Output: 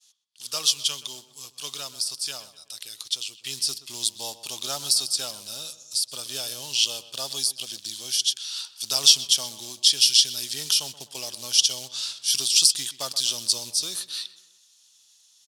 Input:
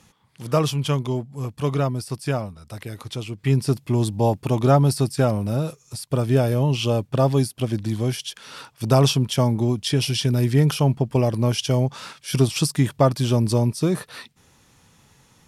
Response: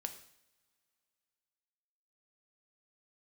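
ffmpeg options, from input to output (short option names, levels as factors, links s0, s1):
-filter_complex "[0:a]acrusher=bits=7:mode=log:mix=0:aa=0.000001,bandpass=f=2800:t=q:w=0.84:csg=0,agate=range=0.0224:threshold=0.00158:ratio=3:detection=peak,aexciter=amount=13.4:drive=5.4:freq=3300,asplit=2[s0][s1];[s1]adelay=126,lowpass=f=2700:p=1,volume=0.188,asplit=2[s2][s3];[s3]adelay=126,lowpass=f=2700:p=1,volume=0.51,asplit=2[s4][s5];[s5]adelay=126,lowpass=f=2700:p=1,volume=0.51,asplit=2[s6][s7];[s7]adelay=126,lowpass=f=2700:p=1,volume=0.51,asplit=2[s8][s9];[s9]adelay=126,lowpass=f=2700:p=1,volume=0.51[s10];[s2][s4][s6][s8][s10]amix=inputs=5:normalize=0[s11];[s0][s11]amix=inputs=2:normalize=0,volume=0.422"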